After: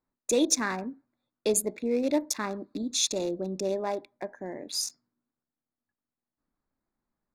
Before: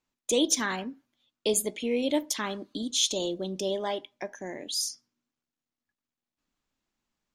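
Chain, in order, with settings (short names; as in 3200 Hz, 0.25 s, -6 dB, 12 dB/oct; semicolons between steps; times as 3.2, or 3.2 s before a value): Wiener smoothing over 15 samples; Butterworth band-stop 3100 Hz, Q 4.5; gain +1 dB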